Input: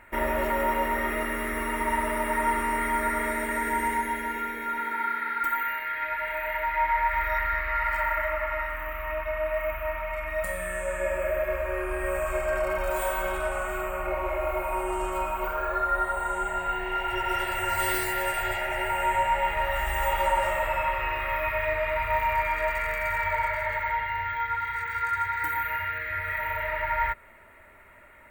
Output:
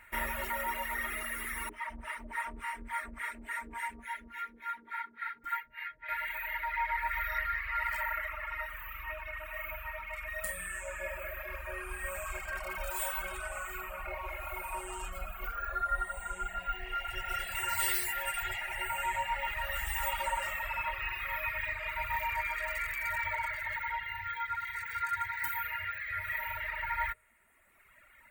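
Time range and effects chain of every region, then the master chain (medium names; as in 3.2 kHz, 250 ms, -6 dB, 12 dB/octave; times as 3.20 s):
1.69–6.09 s: low-pass 3.1 kHz 6 dB/octave + harmonic tremolo 3.5 Hz, depth 100%, crossover 560 Hz + loudspeaker Doppler distortion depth 0.32 ms
15.08–17.55 s: tilt shelf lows +3.5 dB, about 770 Hz + band-stop 950 Hz, Q 5.6 + comb 4.2 ms, depth 36%
whole clip: de-hum 51.89 Hz, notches 12; reverb removal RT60 1.6 s; amplifier tone stack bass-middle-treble 5-5-5; trim +8 dB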